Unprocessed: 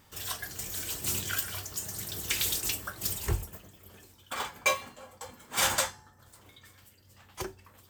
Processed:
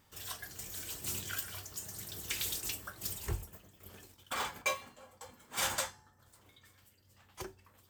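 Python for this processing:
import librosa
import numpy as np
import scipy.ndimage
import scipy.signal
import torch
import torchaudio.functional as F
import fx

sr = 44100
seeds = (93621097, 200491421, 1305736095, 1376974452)

y = fx.leveller(x, sr, passes=2, at=(3.8, 4.62))
y = F.gain(torch.from_numpy(y), -7.0).numpy()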